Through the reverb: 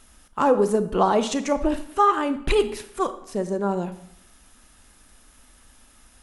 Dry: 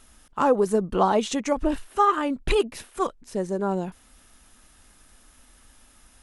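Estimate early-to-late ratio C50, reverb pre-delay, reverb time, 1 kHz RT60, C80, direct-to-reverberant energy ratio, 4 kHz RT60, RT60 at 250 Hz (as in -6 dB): 13.0 dB, 27 ms, 0.70 s, 0.70 s, 15.5 dB, 11.0 dB, 0.60 s, 0.75 s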